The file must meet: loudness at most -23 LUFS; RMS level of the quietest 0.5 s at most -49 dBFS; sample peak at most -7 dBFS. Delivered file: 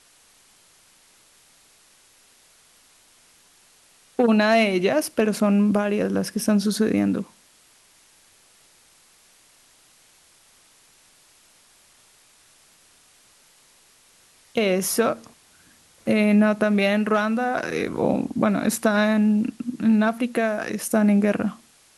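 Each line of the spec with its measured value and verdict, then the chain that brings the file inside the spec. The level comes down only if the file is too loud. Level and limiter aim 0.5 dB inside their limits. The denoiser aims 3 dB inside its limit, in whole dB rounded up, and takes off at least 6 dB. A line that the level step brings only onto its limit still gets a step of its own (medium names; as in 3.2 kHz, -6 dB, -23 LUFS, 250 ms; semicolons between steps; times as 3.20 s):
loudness -21.5 LUFS: fail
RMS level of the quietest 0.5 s -56 dBFS: pass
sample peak -6.0 dBFS: fail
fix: trim -2 dB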